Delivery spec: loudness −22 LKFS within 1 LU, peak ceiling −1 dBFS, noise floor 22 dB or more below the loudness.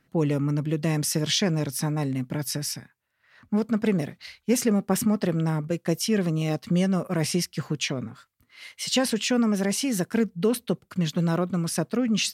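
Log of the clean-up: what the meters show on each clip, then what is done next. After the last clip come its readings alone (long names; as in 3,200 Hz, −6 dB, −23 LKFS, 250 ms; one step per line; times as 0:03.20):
integrated loudness −25.5 LKFS; sample peak −10.0 dBFS; target loudness −22.0 LKFS
→ level +3.5 dB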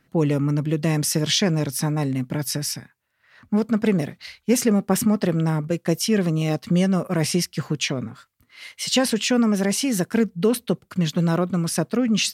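integrated loudness −22.0 LKFS; sample peak −6.5 dBFS; background noise floor −67 dBFS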